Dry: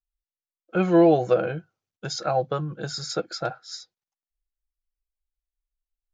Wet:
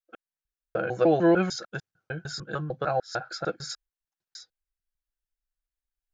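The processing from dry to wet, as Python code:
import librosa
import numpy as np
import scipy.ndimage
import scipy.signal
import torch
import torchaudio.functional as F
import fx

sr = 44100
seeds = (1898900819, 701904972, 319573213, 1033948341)

y = fx.block_reorder(x, sr, ms=150.0, group=5)
y = fx.peak_eq(y, sr, hz=1600.0, db=8.0, octaves=0.38)
y = y * 10.0 ** (-3.5 / 20.0)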